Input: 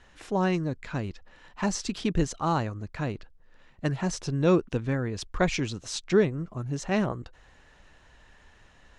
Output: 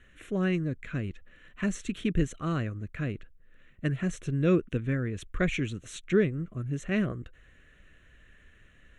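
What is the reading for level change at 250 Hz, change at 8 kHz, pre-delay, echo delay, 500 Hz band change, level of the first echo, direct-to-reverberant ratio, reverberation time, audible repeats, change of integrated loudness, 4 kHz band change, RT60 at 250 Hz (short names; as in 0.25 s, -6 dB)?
-1.0 dB, -8.0 dB, none, none, -3.5 dB, none, none, none, none, -2.0 dB, -7.0 dB, none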